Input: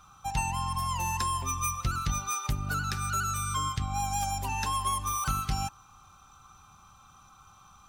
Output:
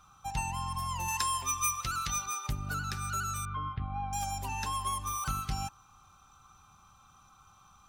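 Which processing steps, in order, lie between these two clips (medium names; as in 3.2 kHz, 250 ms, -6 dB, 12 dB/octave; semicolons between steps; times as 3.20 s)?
1.08–2.26 s: tilt shelf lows -6.5 dB, about 710 Hz; 3.45–4.13 s: Gaussian low-pass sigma 3.5 samples; trim -4 dB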